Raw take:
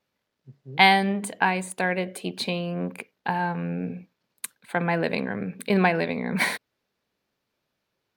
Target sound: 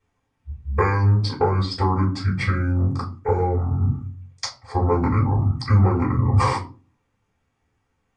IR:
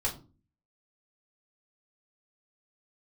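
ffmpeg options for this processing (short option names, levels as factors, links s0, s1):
-filter_complex "[0:a]asetrate=22696,aresample=44100,atempo=1.94306,acompressor=threshold=0.0794:ratio=12[s0];[1:a]atrim=start_sample=2205[s1];[s0][s1]afir=irnorm=-1:irlink=0,volume=1.12"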